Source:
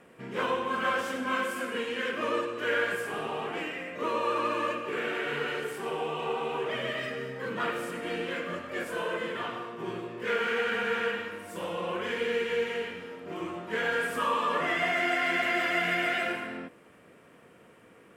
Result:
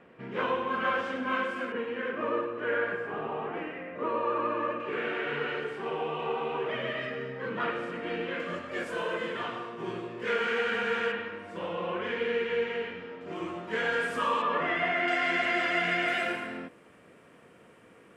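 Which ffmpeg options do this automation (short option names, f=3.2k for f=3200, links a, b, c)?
-af "asetnsamples=n=441:p=0,asendcmd='1.72 lowpass f 1700;4.8 lowpass f 3200;8.4 lowpass f 7500;11.12 lowpass f 3300;13.21 lowpass f 7300;14.42 lowpass f 3000;15.08 lowpass f 6500;16.08 lowpass f 11000',lowpass=3.2k"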